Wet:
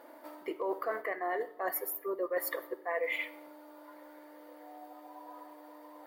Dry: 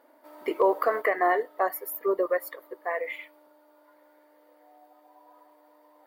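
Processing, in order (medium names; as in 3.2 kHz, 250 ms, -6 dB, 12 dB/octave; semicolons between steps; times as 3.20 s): reverse; compression 10:1, threshold -38 dBFS, peak gain reduction 20.5 dB; reverse; simulated room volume 3400 m³, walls furnished, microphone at 0.77 m; trim +6.5 dB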